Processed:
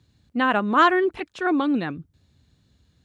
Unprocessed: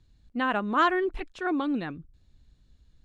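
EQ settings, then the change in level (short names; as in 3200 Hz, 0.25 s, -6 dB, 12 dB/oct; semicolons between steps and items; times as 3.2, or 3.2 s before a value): HPF 78 Hz 24 dB/oct; +6.0 dB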